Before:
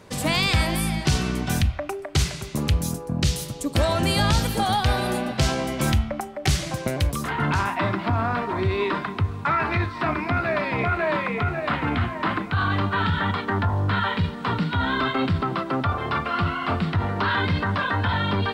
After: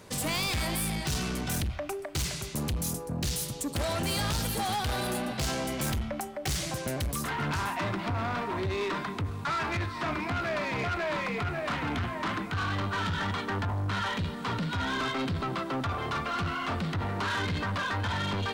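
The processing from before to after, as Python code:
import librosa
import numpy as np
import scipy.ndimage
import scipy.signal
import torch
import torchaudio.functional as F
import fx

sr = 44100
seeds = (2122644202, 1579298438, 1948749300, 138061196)

y = fx.high_shelf(x, sr, hz=5300.0, db=8.5)
y = 10.0 ** (-24.0 / 20.0) * np.tanh(y / 10.0 ** (-24.0 / 20.0))
y = F.gain(torch.from_numpy(y), -3.0).numpy()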